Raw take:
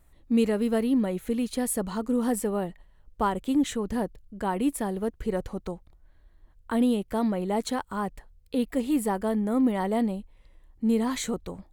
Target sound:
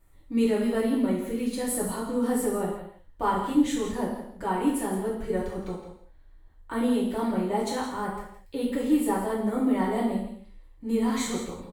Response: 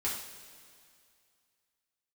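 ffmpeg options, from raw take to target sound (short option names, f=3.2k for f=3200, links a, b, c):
-filter_complex "[0:a]aecho=1:1:166:0.282[a];[1:a]atrim=start_sample=2205,afade=t=out:st=0.26:d=0.01,atrim=end_sample=11907[b];[a][b]afir=irnorm=-1:irlink=0,volume=-4dB"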